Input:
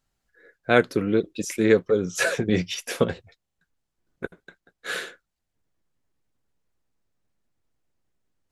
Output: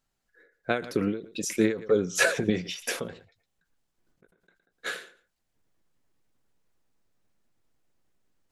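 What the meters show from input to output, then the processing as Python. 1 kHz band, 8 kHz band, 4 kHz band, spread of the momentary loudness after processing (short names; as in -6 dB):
-5.5 dB, +0.5 dB, -2.5 dB, 14 LU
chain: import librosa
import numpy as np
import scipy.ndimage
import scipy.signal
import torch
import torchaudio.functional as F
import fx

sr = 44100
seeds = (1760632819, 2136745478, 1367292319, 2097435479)

y = fx.peak_eq(x, sr, hz=63.0, db=-6.0, octaves=1.6)
y = fx.rider(y, sr, range_db=10, speed_s=0.5)
y = y + 10.0 ** (-24.0 / 20.0) * np.pad(y, (int(113 * sr / 1000.0), 0))[:len(y)]
y = fx.end_taper(y, sr, db_per_s=120.0)
y = F.gain(torch.from_numpy(y), 1.5).numpy()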